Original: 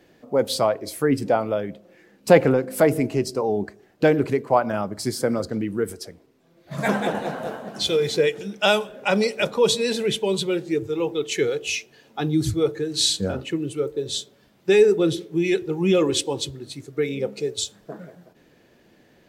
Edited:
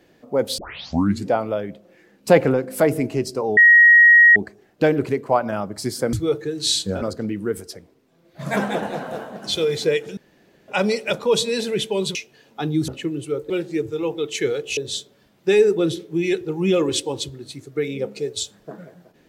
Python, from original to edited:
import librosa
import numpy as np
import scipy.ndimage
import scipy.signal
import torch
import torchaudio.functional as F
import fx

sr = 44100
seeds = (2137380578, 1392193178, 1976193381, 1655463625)

y = fx.edit(x, sr, fx.tape_start(start_s=0.58, length_s=0.7),
    fx.insert_tone(at_s=3.57, length_s=0.79, hz=1890.0, db=-7.0),
    fx.room_tone_fill(start_s=8.49, length_s=0.51),
    fx.move(start_s=10.47, length_s=1.27, to_s=13.98),
    fx.move(start_s=12.47, length_s=0.89, to_s=5.34), tone=tone)